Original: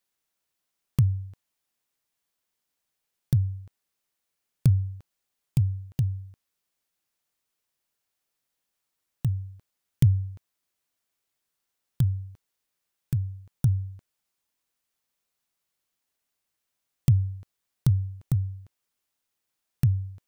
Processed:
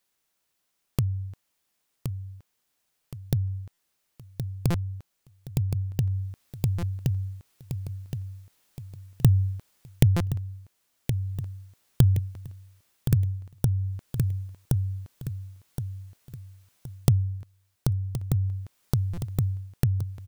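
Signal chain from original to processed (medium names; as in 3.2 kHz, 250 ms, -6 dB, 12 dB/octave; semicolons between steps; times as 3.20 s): compression 5:1, threshold -28 dBFS, peak gain reduction 12.5 dB; feedback delay 1070 ms, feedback 38%, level -7 dB; gain riding within 5 dB 0.5 s; buffer glitch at 3.73/4.70/6.78/10.16/19.13 s, samples 256, times 7; trim +8.5 dB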